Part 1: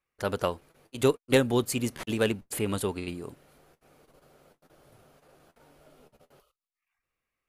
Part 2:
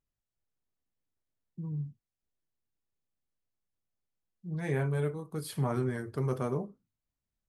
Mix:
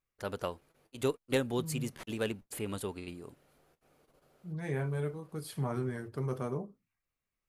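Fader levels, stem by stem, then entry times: -8.0 dB, -3.5 dB; 0.00 s, 0.00 s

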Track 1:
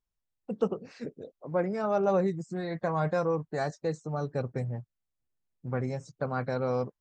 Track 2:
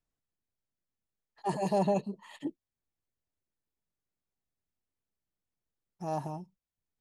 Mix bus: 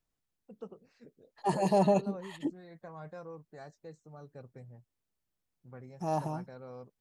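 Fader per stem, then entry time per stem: -17.5 dB, +2.5 dB; 0.00 s, 0.00 s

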